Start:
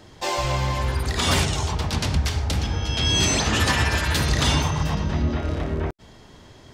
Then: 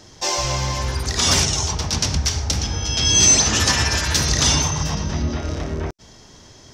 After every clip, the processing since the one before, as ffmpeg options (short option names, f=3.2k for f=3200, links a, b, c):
-af "equalizer=f=5.8k:w=2.1:g=14.5"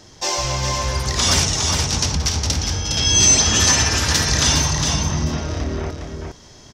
-af "aecho=1:1:410:0.562"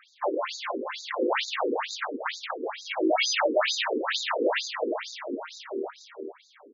-af "acrusher=samples=8:mix=1:aa=0.000001,afftfilt=real='re*between(b*sr/1024,350*pow(5200/350,0.5+0.5*sin(2*PI*2.2*pts/sr))/1.41,350*pow(5200/350,0.5+0.5*sin(2*PI*2.2*pts/sr))*1.41)':imag='im*between(b*sr/1024,350*pow(5200/350,0.5+0.5*sin(2*PI*2.2*pts/sr))/1.41,350*pow(5200/350,0.5+0.5*sin(2*PI*2.2*pts/sr))*1.41)':win_size=1024:overlap=0.75"